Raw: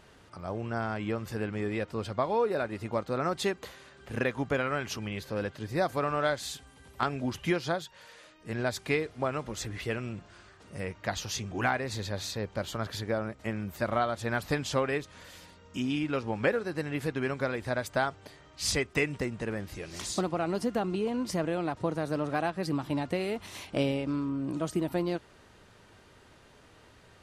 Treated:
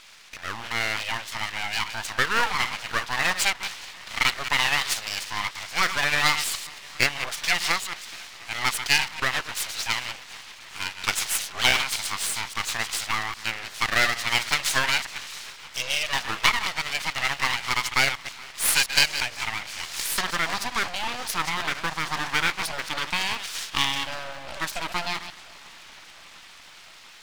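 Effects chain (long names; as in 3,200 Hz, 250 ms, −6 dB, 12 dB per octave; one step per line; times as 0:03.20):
delay that plays each chunk backwards 115 ms, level −10 dB
band-pass filter 390–5,100 Hz
on a send: feedback echo with a long and a short gap by turns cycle 701 ms, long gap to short 1.5 to 1, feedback 71%, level −23.5 dB
on the sum: full-wave rectification
tilt shelving filter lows −9.5 dB, about 1,100 Hz
level +9 dB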